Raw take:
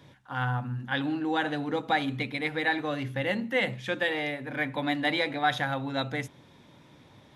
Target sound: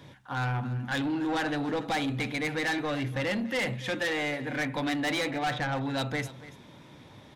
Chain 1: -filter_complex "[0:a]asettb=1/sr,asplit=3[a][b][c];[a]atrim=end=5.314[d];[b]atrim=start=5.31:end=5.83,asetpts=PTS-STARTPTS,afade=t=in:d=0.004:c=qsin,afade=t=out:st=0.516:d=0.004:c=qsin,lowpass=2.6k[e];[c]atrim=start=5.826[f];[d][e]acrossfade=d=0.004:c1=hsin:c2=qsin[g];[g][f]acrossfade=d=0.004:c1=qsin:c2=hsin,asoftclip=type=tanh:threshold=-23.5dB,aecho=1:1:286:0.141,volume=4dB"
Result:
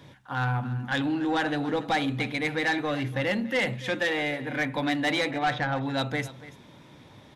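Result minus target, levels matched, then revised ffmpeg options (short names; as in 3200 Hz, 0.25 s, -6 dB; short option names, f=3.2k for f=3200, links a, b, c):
soft clip: distortion -5 dB
-filter_complex "[0:a]asettb=1/sr,asplit=3[a][b][c];[a]atrim=end=5.314[d];[b]atrim=start=5.31:end=5.83,asetpts=PTS-STARTPTS,afade=t=in:d=0.004:c=qsin,afade=t=out:st=0.516:d=0.004:c=qsin,lowpass=2.6k[e];[c]atrim=start=5.826[f];[d][e]acrossfade=d=0.004:c1=hsin:c2=qsin[g];[g][f]acrossfade=d=0.004:c1=qsin:c2=hsin,asoftclip=type=tanh:threshold=-29.5dB,aecho=1:1:286:0.141,volume=4dB"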